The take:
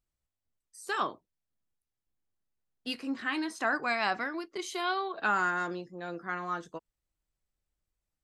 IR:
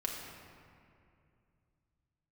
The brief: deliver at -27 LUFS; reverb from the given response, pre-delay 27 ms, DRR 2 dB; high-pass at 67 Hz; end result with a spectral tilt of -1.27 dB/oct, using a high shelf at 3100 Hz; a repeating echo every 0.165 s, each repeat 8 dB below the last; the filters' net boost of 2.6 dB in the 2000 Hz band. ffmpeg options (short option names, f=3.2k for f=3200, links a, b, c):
-filter_complex "[0:a]highpass=67,equalizer=f=2k:t=o:g=6,highshelf=f=3.1k:g=-7,aecho=1:1:165|330|495|660|825:0.398|0.159|0.0637|0.0255|0.0102,asplit=2[a][b];[1:a]atrim=start_sample=2205,adelay=27[c];[b][c]afir=irnorm=-1:irlink=0,volume=-4.5dB[d];[a][d]amix=inputs=2:normalize=0,volume=2dB"